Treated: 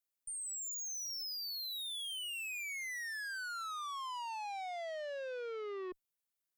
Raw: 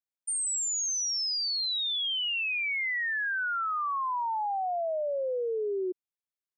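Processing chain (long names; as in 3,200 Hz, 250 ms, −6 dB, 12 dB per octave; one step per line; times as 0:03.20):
high-shelf EQ 8,300 Hz +9.5 dB
tube saturation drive 41 dB, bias 0.2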